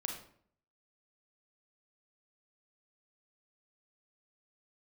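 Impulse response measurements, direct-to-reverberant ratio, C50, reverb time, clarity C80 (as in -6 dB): 2.0 dB, 5.0 dB, 0.60 s, 9.0 dB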